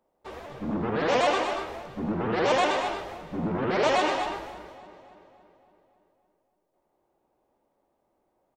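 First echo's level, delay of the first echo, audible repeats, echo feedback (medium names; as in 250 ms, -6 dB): -12.0 dB, 78 ms, 3, no regular repeats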